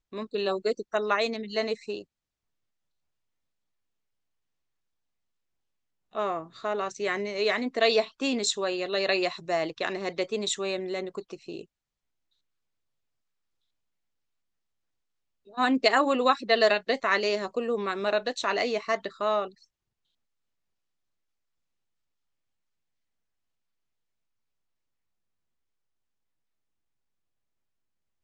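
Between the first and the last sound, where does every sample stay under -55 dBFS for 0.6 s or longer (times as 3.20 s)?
2.04–6.12 s
11.65–15.46 s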